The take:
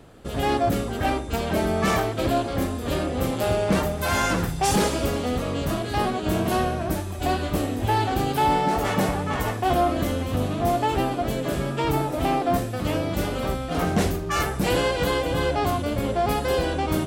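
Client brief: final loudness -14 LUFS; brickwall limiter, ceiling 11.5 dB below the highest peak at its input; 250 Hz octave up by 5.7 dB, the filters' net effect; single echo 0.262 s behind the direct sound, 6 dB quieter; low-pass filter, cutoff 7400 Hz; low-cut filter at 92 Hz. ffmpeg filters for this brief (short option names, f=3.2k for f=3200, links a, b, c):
-af "highpass=92,lowpass=7.4k,equalizer=f=250:t=o:g=7.5,alimiter=limit=-17.5dB:level=0:latency=1,aecho=1:1:262:0.501,volume=11dB"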